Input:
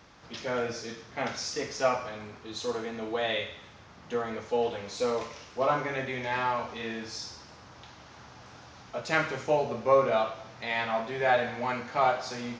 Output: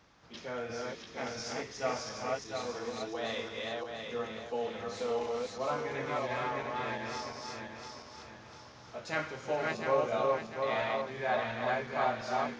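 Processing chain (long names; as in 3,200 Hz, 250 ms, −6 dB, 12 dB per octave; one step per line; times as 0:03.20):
feedback delay that plays each chunk backwards 349 ms, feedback 62%, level −1 dB
level −8 dB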